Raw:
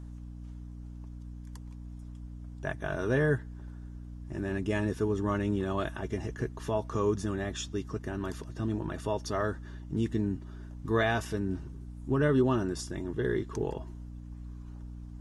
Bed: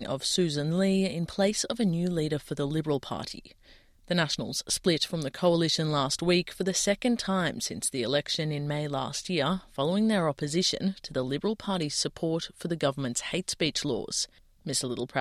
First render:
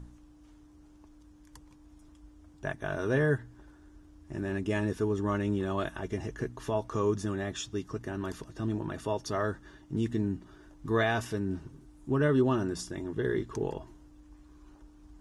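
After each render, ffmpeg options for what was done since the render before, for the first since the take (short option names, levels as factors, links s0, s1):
-af "bandreject=f=60:t=h:w=4,bandreject=f=120:t=h:w=4,bandreject=f=180:t=h:w=4,bandreject=f=240:t=h:w=4"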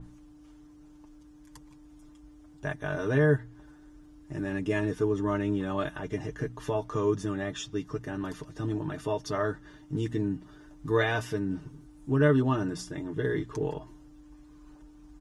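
-af "aecho=1:1:6.7:0.66,adynamicequalizer=threshold=0.00224:dfrequency=4500:dqfactor=0.7:tfrequency=4500:tqfactor=0.7:attack=5:release=100:ratio=0.375:range=2.5:mode=cutabove:tftype=highshelf"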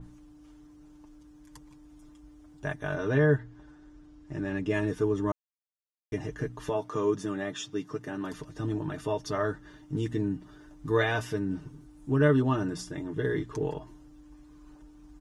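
-filter_complex "[0:a]asettb=1/sr,asplit=3[s0][s1][s2];[s0]atrim=end=2.954[s3];[s1]atrim=start=2.95:end=4.74,asetpts=PTS-STARTPTS,afade=t=in:d=0.004:c=qsin,afade=t=out:st=1.786:d=0.004:c=qsin,lowpass=6500[s4];[s2]atrim=start=4.736[s5];[s3][s4]acrossfade=d=0.004:c1=hsin:c2=qsin[s6];[s6][s5]acrossfade=d=0.004:c1=qsin:c2=hsin,asettb=1/sr,asplit=3[s7][s8][s9];[s7]atrim=end=6.694[s10];[s8]atrim=start=6.69:end=8.32,asetpts=PTS-STARTPTS,afade=t=in:d=0.004:c=qsin,afade=t=out:st=1.626:d=0.004:c=qsin,highpass=150[s11];[s9]atrim=start=8.316[s12];[s10][s11]acrossfade=d=0.004:c1=hsin:c2=qsin[s13];[s13][s12]acrossfade=d=0.004:c1=qsin:c2=hsin,asplit=3[s14][s15][s16];[s14]atrim=end=5.32,asetpts=PTS-STARTPTS,afade=t=out:st=5.316:d=0.004:c=hsin[s17];[s15]atrim=start=5.32:end=6.12,asetpts=PTS-STARTPTS,volume=0[s18];[s16]atrim=start=6.12,asetpts=PTS-STARTPTS,afade=t=in:d=0.004:c=hsin[s19];[s17][s18][s19]concat=n=3:v=0:a=1"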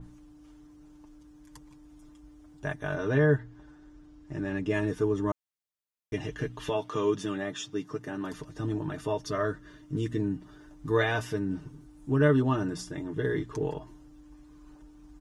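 -filter_complex "[0:a]asettb=1/sr,asplit=3[s0][s1][s2];[s0]atrim=end=6.144[s3];[s1]atrim=start=6.14:end=7.38,asetpts=PTS-STARTPTS,afade=t=in:d=0.004:c=qsin,afade=t=out:st=1.236:d=0.004:c=qsin,equalizer=f=3100:w=1.5:g=9.5[s4];[s2]atrim=start=7.376[s5];[s3][s4]acrossfade=d=0.004:c1=hsin:c2=qsin[s6];[s6][s5]acrossfade=d=0.004:c1=qsin:c2=hsin,asettb=1/sr,asplit=3[s7][s8][s9];[s7]atrim=end=9.264[s10];[s8]atrim=start=9.26:end=10.2,asetpts=PTS-STARTPTS,afade=t=in:d=0.004:c=qsin,afade=t=out:st=0.936:d=0.004:c=qsin,asuperstop=centerf=830:order=8:qfactor=4.6[s11];[s9]atrim=start=10.196[s12];[s10][s11]acrossfade=d=0.004:c1=hsin:c2=qsin[s13];[s13][s12]acrossfade=d=0.004:c1=qsin:c2=hsin"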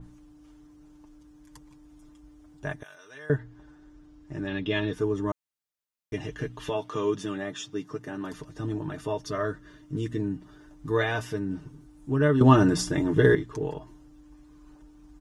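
-filter_complex "[0:a]asettb=1/sr,asplit=3[s0][s1][s2];[s0]atrim=end=2.834[s3];[s1]atrim=start=2.83:end=3.3,asetpts=PTS-STARTPTS,afade=t=in:d=0.004:c=qsin,afade=t=out:st=0.466:d=0.004:c=qsin,aderivative[s4];[s2]atrim=start=3.296[s5];[s3][s4]acrossfade=d=0.004:c1=hsin:c2=qsin[s6];[s6][s5]acrossfade=d=0.004:c1=qsin:c2=hsin,asettb=1/sr,asplit=3[s7][s8][s9];[s7]atrim=end=4.474[s10];[s8]atrim=start=4.47:end=4.93,asetpts=PTS-STARTPTS,afade=t=in:d=0.004:c=qsin,afade=t=out:st=0.456:d=0.004:c=qsin,lowpass=f=3500:t=q:w=7[s11];[s9]atrim=start=4.926[s12];[s10][s11]acrossfade=d=0.004:c1=hsin:c2=qsin[s13];[s13][s12]acrossfade=d=0.004:c1=qsin:c2=hsin,asplit=3[s14][s15][s16];[s14]atrim=end=12.412[s17];[s15]atrim=start=12.408:end=13.352,asetpts=PTS-STARTPTS,volume=3.35[s18];[s16]atrim=start=13.348[s19];[s17][s18]acrossfade=d=0.004:c1=hsin:c2=hsin[s20];[s20][s19]acrossfade=d=0.004:c1=hsin:c2=hsin"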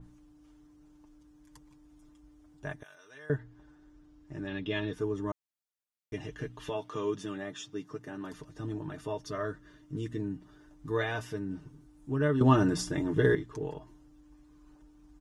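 -af "volume=0.531"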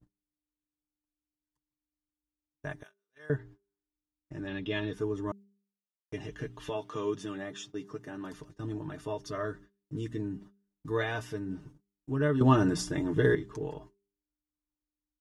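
-af "agate=range=0.0141:threshold=0.00355:ratio=16:detection=peak,bandreject=f=199.6:t=h:w=4,bandreject=f=399.2:t=h:w=4"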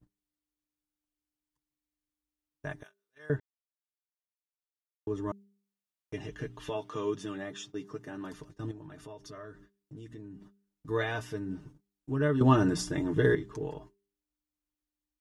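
-filter_complex "[0:a]asettb=1/sr,asplit=3[s0][s1][s2];[s0]atrim=end=8.714[s3];[s1]atrim=start=8.71:end=10.89,asetpts=PTS-STARTPTS,afade=t=in:d=0.004:c=qsin,afade=t=out:st=2.176:d=0.004:c=qsin,acompressor=threshold=0.00447:ratio=2.5:attack=3.2:release=140:knee=1:detection=peak[s4];[s2]atrim=start=10.886[s5];[s3][s4]acrossfade=d=0.004:c1=hsin:c2=qsin[s6];[s6][s5]acrossfade=d=0.004:c1=qsin:c2=hsin,asplit=3[s7][s8][s9];[s7]atrim=end=3.4,asetpts=PTS-STARTPTS,afade=t=out:st=3.396:d=0.004:c=hsin[s10];[s8]atrim=start=3.4:end=5.07,asetpts=PTS-STARTPTS,volume=0[s11];[s9]atrim=start=5.07,asetpts=PTS-STARTPTS,afade=t=in:d=0.004:c=hsin[s12];[s10][s11][s12]concat=n=3:v=0:a=1"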